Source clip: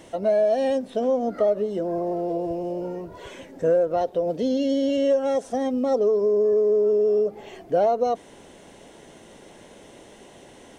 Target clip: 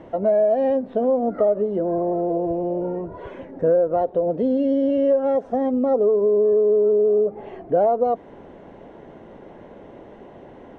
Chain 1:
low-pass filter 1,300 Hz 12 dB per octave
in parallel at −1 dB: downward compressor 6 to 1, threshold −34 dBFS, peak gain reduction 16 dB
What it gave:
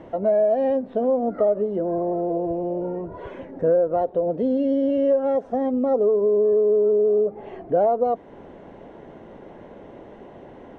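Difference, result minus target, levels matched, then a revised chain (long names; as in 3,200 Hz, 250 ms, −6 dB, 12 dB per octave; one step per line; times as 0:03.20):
downward compressor: peak gain reduction +6 dB
low-pass filter 1,300 Hz 12 dB per octave
in parallel at −1 dB: downward compressor 6 to 1, threshold −27 dBFS, peak gain reduction 10.5 dB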